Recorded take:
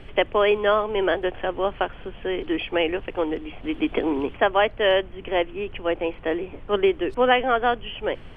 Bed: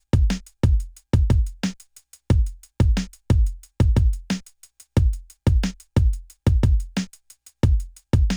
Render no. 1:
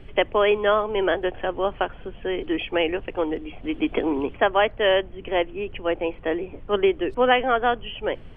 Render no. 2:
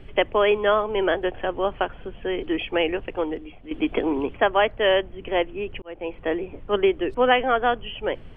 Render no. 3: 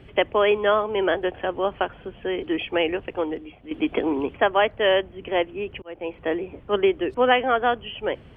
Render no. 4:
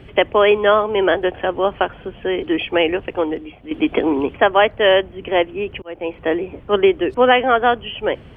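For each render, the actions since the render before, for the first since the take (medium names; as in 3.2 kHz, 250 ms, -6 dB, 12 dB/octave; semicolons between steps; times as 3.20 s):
noise reduction 6 dB, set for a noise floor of -42 dBFS
2.94–3.71 s: fade out equal-power, to -12.5 dB; 5.82–6.22 s: fade in linear
high-pass 61 Hz 12 dB/octave
trim +6 dB; peak limiter -1 dBFS, peak gain reduction 2 dB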